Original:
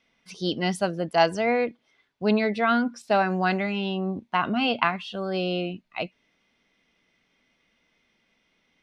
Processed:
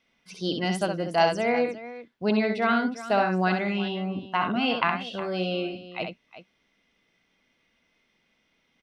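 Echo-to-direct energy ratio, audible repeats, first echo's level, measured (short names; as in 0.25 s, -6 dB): -5.0 dB, 2, -5.5 dB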